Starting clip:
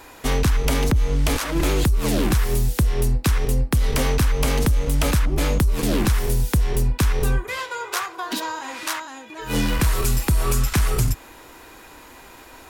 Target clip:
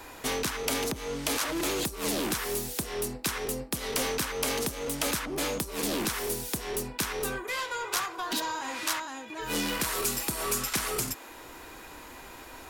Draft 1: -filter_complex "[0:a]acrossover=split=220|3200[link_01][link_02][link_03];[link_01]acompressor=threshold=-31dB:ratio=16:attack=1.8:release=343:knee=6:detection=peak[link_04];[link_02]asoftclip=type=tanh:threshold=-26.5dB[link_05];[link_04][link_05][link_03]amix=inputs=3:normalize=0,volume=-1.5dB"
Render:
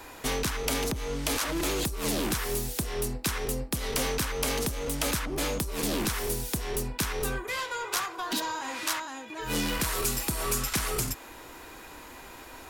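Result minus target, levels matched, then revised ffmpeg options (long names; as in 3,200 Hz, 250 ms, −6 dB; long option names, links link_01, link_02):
downward compressor: peak gain reduction −10.5 dB
-filter_complex "[0:a]acrossover=split=220|3200[link_01][link_02][link_03];[link_01]acompressor=threshold=-42dB:ratio=16:attack=1.8:release=343:knee=6:detection=peak[link_04];[link_02]asoftclip=type=tanh:threshold=-26.5dB[link_05];[link_04][link_05][link_03]amix=inputs=3:normalize=0,volume=-1.5dB"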